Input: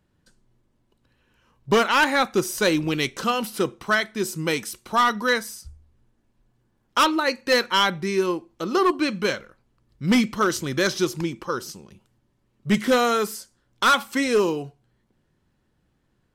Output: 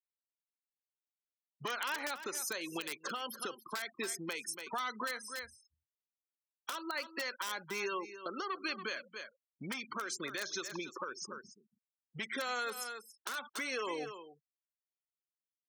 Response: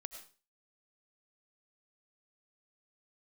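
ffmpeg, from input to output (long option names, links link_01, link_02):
-filter_complex "[0:a]afftfilt=real='re*gte(hypot(re,im),0.0316)':imag='im*gte(hypot(re,im),0.0316)':win_size=1024:overlap=0.75,asetrate=45938,aresample=44100,acrossover=split=920|2100[link_01][link_02][link_03];[link_01]acompressor=threshold=-34dB:ratio=4[link_04];[link_02]acompressor=threshold=-28dB:ratio=4[link_05];[link_03]acompressor=threshold=-30dB:ratio=4[link_06];[link_04][link_05][link_06]amix=inputs=3:normalize=0,acrossover=split=750[link_07][link_08];[link_08]aeval=exprs='(mod(7.08*val(0)+1,2)-1)/7.08':channel_layout=same[link_09];[link_07][link_09]amix=inputs=2:normalize=0,aecho=1:1:283:0.141,acompressor=threshold=-31dB:ratio=6,alimiter=level_in=4dB:limit=-24dB:level=0:latency=1:release=306,volume=-4dB,highpass=330,volume=1dB"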